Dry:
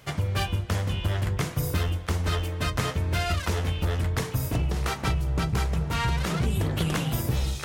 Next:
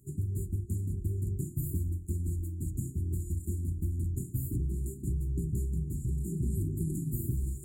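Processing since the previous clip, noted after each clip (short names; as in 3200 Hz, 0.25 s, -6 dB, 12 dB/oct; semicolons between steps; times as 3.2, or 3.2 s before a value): FFT band-reject 400–6800 Hz; gain -5.5 dB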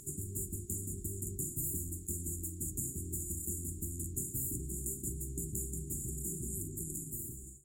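ending faded out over 1.56 s; bell 6400 Hz +13.5 dB 1 oct; spectral compressor 2:1; gain -1.5 dB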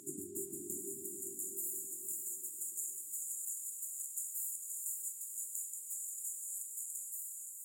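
high-pass sweep 290 Hz -> 2400 Hz, 0.15–2.97; diffused feedback echo 0.515 s, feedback 44%, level -3.5 dB; gain -2.5 dB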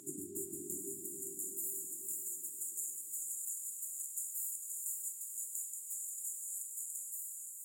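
reverb RT60 1.3 s, pre-delay 7 ms, DRR 11 dB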